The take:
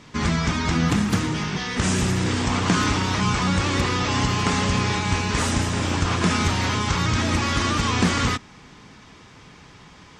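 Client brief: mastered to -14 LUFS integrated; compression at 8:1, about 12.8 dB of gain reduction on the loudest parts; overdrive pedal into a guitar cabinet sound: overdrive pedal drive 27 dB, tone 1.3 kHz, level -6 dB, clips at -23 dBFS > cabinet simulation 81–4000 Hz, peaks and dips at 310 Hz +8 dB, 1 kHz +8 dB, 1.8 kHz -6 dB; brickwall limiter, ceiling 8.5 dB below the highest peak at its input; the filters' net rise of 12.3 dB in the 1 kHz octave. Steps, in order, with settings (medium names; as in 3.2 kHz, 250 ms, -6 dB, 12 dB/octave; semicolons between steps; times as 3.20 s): peaking EQ 1 kHz +8.5 dB; compression 8:1, threshold -27 dBFS; peak limiter -23 dBFS; overdrive pedal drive 27 dB, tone 1.3 kHz, level -6 dB, clips at -23 dBFS; cabinet simulation 81–4000 Hz, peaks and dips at 310 Hz +8 dB, 1 kHz +8 dB, 1.8 kHz -6 dB; trim +13 dB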